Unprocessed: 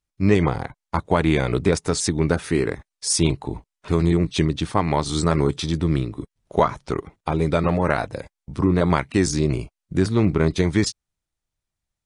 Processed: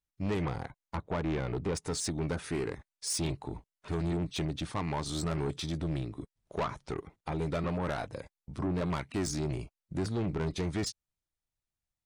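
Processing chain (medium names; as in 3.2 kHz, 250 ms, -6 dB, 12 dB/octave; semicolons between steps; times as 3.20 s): 0.95–1.74 s: low-pass 1.4 kHz -> 2.3 kHz 6 dB/octave; saturation -18.5 dBFS, distortion -9 dB; trim -8.5 dB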